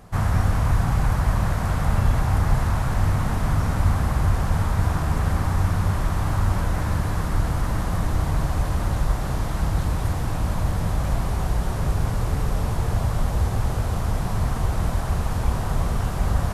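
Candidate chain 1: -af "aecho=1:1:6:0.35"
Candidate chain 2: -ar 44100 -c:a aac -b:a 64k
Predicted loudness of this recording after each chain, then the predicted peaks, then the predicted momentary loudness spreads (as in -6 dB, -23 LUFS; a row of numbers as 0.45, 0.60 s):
-25.0, -24.0 LUFS; -6.0, -7.5 dBFS; 3, 4 LU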